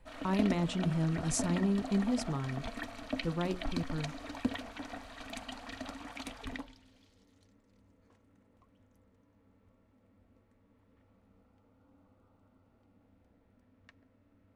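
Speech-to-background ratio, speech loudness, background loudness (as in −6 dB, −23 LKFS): 7.0 dB, −34.0 LKFS, −41.0 LKFS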